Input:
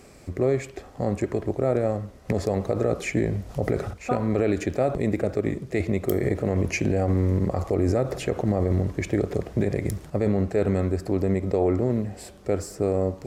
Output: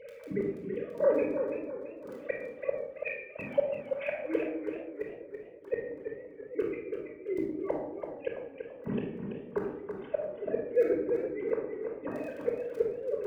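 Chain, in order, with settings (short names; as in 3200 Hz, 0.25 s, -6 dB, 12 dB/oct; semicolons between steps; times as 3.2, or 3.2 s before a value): sine-wave speech; vocal rider within 4 dB 0.5 s; crackle 11/s -38 dBFS; flipped gate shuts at -20 dBFS, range -36 dB; notch comb 350 Hz; shoebox room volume 2600 m³, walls furnished, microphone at 5.1 m; warbling echo 0.333 s, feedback 38%, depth 84 cents, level -7 dB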